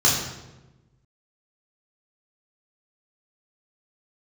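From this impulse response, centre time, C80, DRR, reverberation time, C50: 54 ms, 5.0 dB, −5.0 dB, 1.1 s, 2.5 dB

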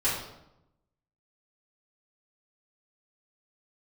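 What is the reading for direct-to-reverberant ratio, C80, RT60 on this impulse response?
−11.5 dB, 6.0 dB, 0.85 s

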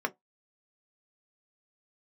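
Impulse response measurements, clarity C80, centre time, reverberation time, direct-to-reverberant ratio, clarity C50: 39.0 dB, 4 ms, 0.15 s, 4.5 dB, 26.5 dB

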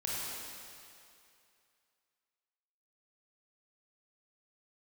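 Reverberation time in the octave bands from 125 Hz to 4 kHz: 2.1, 2.2, 2.5, 2.6, 2.5, 2.4 seconds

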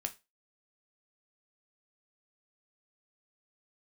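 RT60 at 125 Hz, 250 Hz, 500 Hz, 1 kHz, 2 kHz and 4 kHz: 0.25, 0.25, 0.25, 0.25, 0.25, 0.25 seconds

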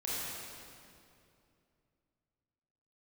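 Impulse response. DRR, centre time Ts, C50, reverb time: −8.5 dB, 176 ms, −5.0 dB, 2.6 s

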